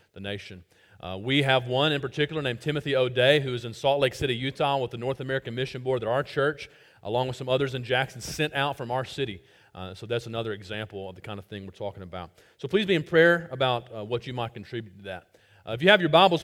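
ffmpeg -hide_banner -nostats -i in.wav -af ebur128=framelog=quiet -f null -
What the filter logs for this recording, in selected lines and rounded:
Integrated loudness:
  I:         -25.9 LUFS
  Threshold: -37.0 LUFS
Loudness range:
  LRA:         8.1 LU
  Threshold: -47.4 LUFS
  LRA low:   -32.9 LUFS
  LRA high:  -24.8 LUFS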